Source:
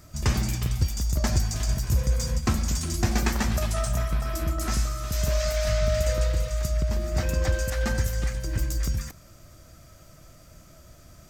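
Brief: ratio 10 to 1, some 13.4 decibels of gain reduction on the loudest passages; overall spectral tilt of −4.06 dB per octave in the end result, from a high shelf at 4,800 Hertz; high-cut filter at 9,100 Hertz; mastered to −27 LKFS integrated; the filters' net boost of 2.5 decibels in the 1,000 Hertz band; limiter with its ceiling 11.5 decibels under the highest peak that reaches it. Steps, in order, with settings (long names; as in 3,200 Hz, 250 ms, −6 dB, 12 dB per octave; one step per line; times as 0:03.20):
low-pass filter 9,100 Hz
parametric band 1,000 Hz +3 dB
high-shelf EQ 4,800 Hz +7 dB
downward compressor 10 to 1, threshold −31 dBFS
level +12.5 dB
brickwall limiter −17 dBFS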